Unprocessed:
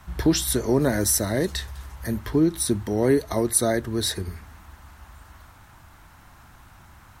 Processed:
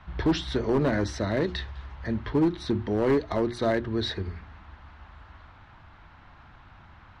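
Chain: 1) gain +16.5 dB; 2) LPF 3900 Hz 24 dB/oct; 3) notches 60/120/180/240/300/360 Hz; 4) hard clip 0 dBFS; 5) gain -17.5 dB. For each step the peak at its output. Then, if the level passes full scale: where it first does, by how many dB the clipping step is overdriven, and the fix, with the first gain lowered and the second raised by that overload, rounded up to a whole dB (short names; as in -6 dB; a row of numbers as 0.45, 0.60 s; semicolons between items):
+9.5, +8.0, +8.5, 0.0, -17.5 dBFS; step 1, 8.5 dB; step 1 +7.5 dB, step 5 -8.5 dB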